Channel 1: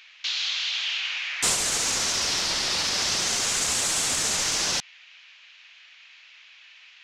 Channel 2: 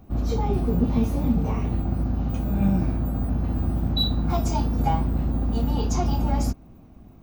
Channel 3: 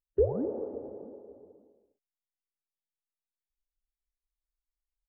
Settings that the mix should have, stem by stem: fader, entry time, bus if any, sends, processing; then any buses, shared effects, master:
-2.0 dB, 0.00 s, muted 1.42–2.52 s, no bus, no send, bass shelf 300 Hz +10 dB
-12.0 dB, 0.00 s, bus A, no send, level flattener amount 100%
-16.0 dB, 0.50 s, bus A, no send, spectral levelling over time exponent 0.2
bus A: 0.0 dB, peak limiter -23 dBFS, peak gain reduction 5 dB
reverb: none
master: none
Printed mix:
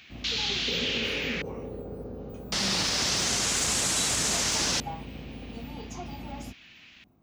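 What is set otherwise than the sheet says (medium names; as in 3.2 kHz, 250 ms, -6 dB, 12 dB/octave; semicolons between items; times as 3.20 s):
stem 2: missing level flattener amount 100%; master: extra high-pass 150 Hz 6 dB/octave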